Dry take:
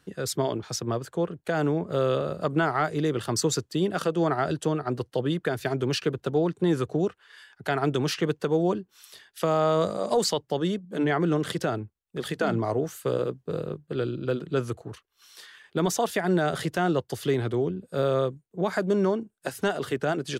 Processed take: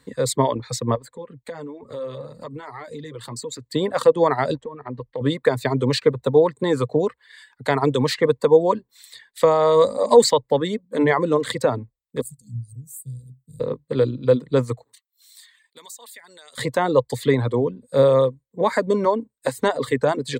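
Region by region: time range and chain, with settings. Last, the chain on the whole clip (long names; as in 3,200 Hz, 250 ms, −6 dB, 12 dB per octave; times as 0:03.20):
0:00.95–0:03.66: flanger 1.1 Hz, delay 2.3 ms, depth 4.4 ms, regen −39% + downward compressor 5 to 1, threshold −35 dBFS
0:04.55–0:05.21: mu-law and A-law mismatch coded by A + low-pass filter 2,000 Hz + downward compressor 16 to 1, threshold −31 dBFS
0:12.21–0:13.60: Chebyshev band-stop filter 140–9,000 Hz, order 3 + tilt shelving filter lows −5.5 dB, about 920 Hz
0:14.84–0:16.58: first difference + downward compressor 2.5 to 1, threshold −46 dBFS
whole clip: dynamic equaliser 720 Hz, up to +6 dB, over −38 dBFS, Q 0.74; reverb reduction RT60 0.82 s; EQ curve with evenly spaced ripples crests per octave 1, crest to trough 12 dB; level +3.5 dB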